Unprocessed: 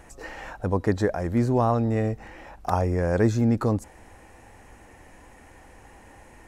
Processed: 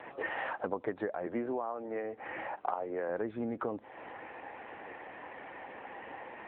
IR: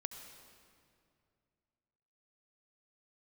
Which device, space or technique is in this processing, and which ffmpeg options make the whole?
voicemail: -filter_complex "[0:a]asettb=1/sr,asplit=3[a][b][c];[a]atrim=end=1.264[d];[b]atrim=start=1.26:end=3.09,asetpts=PTS-STARTPTS,afade=t=in:d=0.004:c=qsin,afade=t=out:st=1.826:d=0.004:c=qsin,acrossover=split=200 3500:gain=0.251 1 0.112[e][f][g];[e][f][g]amix=inputs=3:normalize=0[h];[c]atrim=start=3.086[i];[d][h]acrossfade=d=0.004:c1=hsin:c2=qsin[j];[j][i]acrossfade=d=0.004:c1=qsin:c2=hsin,highpass=360,lowpass=3.1k,acompressor=threshold=-39dB:ratio=10,volume=8dB" -ar 8000 -c:a libopencore_amrnb -b:a 7950

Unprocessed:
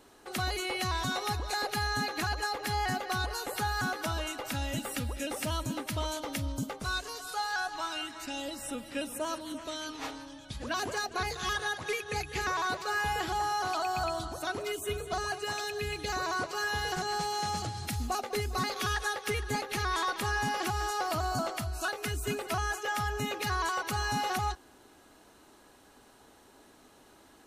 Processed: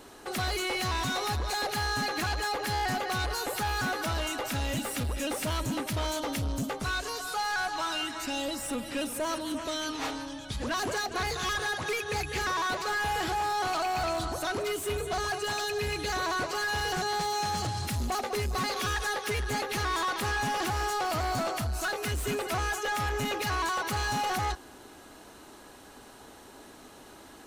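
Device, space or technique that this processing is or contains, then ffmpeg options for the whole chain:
saturation between pre-emphasis and de-emphasis: -filter_complex "[0:a]asettb=1/sr,asplit=3[a][b][c];[a]atrim=end=6.734[d];[b]atrim=start=6.73:end=7.37,asetpts=PTS-STARTPTS,afade=t=in:d=0.004:c=qsin,afade=t=out:st=0.636:d=0.004:c=qsin,acrossover=split=3200[e][f];[f]acompressor=threshold=-42dB:ratio=4:attack=1:release=60[g];[e][g]amix=inputs=2:normalize=0[h];[c]atrim=start=7.366[i];[d][h]acrossfade=d=0.004:c1=hsin:c2=qsin[j];[j][i]acrossfade=d=0.004:c1=qsin:c2=hsin,highshelf=f=7.6k:g=11,asoftclip=type=tanh:threshold=-34.5dB,highshelf=f=7.6k:g=-11,volume=8dB"

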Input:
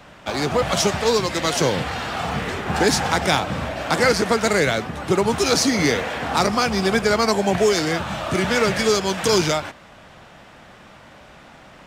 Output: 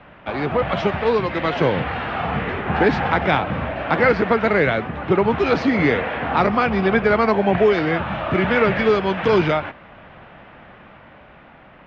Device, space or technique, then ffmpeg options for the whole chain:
action camera in a waterproof case: -af "lowpass=f=2.8k:w=0.5412,lowpass=f=2.8k:w=1.3066,dynaudnorm=f=240:g=11:m=3dB" -ar 44100 -c:a aac -b:a 128k

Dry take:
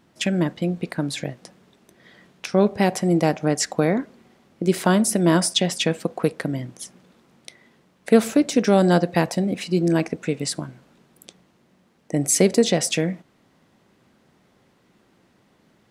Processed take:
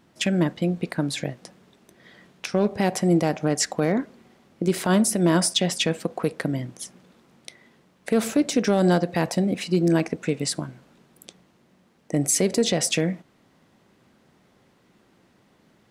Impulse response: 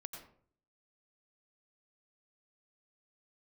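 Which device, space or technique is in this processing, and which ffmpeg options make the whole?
limiter into clipper: -af "alimiter=limit=-10.5dB:level=0:latency=1:release=74,asoftclip=type=hard:threshold=-11.5dB"

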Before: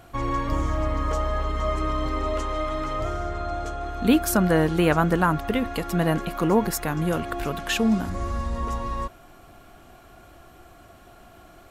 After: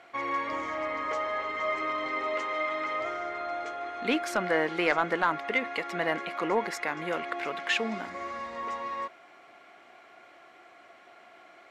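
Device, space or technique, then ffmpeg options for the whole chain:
intercom: -af "highpass=440,lowpass=4.7k,equalizer=f=2.1k:t=o:w=0.31:g=12,asoftclip=type=tanh:threshold=-10.5dB,volume=-2.5dB"

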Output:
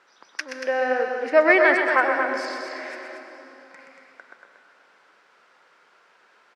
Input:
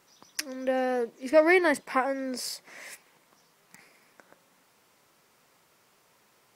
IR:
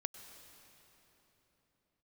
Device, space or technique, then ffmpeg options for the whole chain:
station announcement: -filter_complex "[0:a]asettb=1/sr,asplit=3[a][b][c];[a]atrim=end=2.454[d];[b]atrim=start=2.45:end=2.9,asetpts=PTS-STARTPTS,afade=t=in:d=0.004:c=qsin,afade=t=out:st=0.446:d=0.004:c=qsin,lowpass=5.8k[e];[c]atrim=start=2.896[f];[d][e]acrossfade=d=0.004:c1=hsin:c2=qsin[g];[g][f]acrossfade=d=0.004:c1=qsin:c2=hsin,highpass=390,lowpass=3.8k,equalizer=f=1.5k:t=o:w=0.43:g=9,aecho=1:1:125.4|233.2:0.447|0.447[h];[1:a]atrim=start_sample=2205[i];[h][i]afir=irnorm=-1:irlink=0,volume=6dB"

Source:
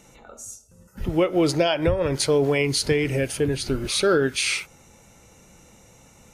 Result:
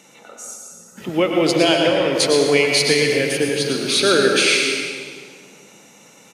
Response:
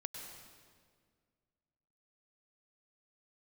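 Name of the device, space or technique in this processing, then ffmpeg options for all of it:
PA in a hall: -filter_complex "[0:a]highpass=f=170:w=0.5412,highpass=f=170:w=1.3066,equalizer=f=3.1k:t=o:w=1.9:g=5.5,aecho=1:1:113:0.398[a];[1:a]atrim=start_sample=2205[b];[a][b]afir=irnorm=-1:irlink=0,volume=6dB"

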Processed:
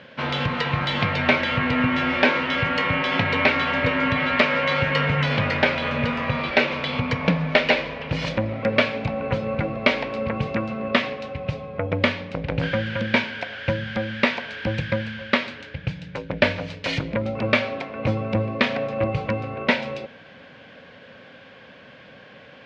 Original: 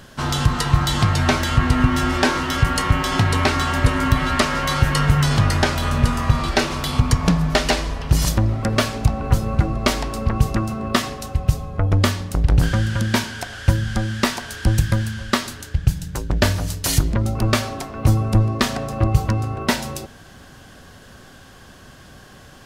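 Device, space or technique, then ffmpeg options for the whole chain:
kitchen radio: -af "highpass=190,equalizer=f=360:t=q:w=4:g=-9,equalizer=f=520:t=q:w=4:g=9,equalizer=f=760:t=q:w=4:g=-4,equalizer=f=1.2k:t=q:w=4:g=-5,equalizer=f=2.3k:t=q:w=4:g=9,lowpass=f=3.6k:w=0.5412,lowpass=f=3.6k:w=1.3066"

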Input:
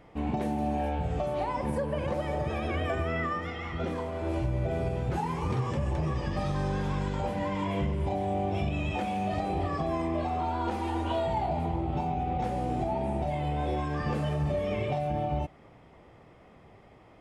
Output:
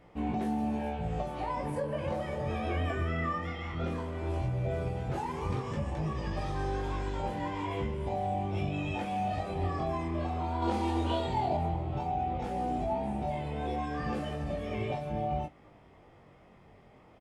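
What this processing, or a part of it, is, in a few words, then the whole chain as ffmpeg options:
double-tracked vocal: -filter_complex "[0:a]asplit=2[a][b];[b]adelay=23,volume=-13.5dB[c];[a][c]amix=inputs=2:normalize=0,flanger=delay=17.5:depth=6.4:speed=0.14,asettb=1/sr,asplit=3[d][e][f];[d]atrim=end=10.624[g];[e]atrim=start=10.62:end=11.57,asetpts=PTS-STARTPTS,afade=t=in:d=0.004:c=qsin,afade=t=out:st=0.946:d=0.004:c=qsin,equalizer=f=250:t=o:w=1:g=3,equalizer=f=500:t=o:w=1:g=4,equalizer=f=4k:t=o:w=1:g=6,equalizer=f=8k:t=o:w=1:g=4[h];[f]atrim=start=11.566[i];[g][h]acrossfade=d=0.004:c1=hsin:c2=qsin[j];[j][i]acrossfade=d=0.004:c1=qsin:c2=hsin"

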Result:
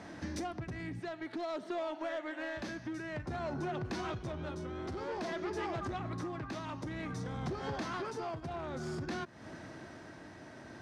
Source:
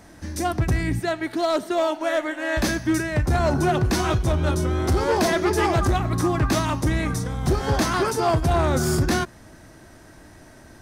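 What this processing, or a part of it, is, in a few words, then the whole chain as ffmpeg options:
AM radio: -af "highpass=120,lowpass=4.5k,acompressor=threshold=-35dB:ratio=6,asoftclip=type=tanh:threshold=-30.5dB,tremolo=f=0.53:d=0.32,volume=1dB"

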